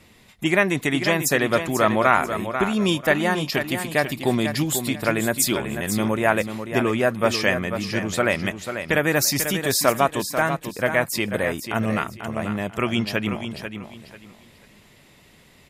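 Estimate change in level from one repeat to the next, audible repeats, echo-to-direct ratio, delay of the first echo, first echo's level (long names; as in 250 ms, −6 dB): −12.0 dB, 3, −8.0 dB, 491 ms, −8.5 dB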